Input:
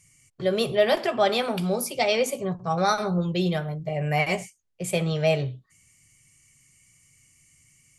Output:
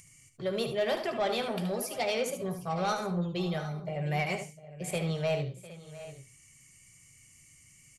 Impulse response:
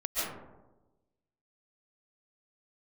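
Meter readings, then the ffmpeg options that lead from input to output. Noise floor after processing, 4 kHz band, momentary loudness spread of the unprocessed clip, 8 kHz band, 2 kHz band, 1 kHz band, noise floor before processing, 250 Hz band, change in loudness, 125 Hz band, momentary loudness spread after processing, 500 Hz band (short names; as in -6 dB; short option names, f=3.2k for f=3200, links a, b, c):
-59 dBFS, -7.5 dB, 7 LU, -6.0 dB, -7.5 dB, -7.5 dB, -66 dBFS, -6.5 dB, -7.0 dB, -6.0 dB, 15 LU, -7.5 dB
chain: -af "acompressor=mode=upward:threshold=-43dB:ratio=2.5,asoftclip=type=tanh:threshold=-16dB,aecho=1:1:74|703|763:0.355|0.133|0.133,volume=-6.5dB"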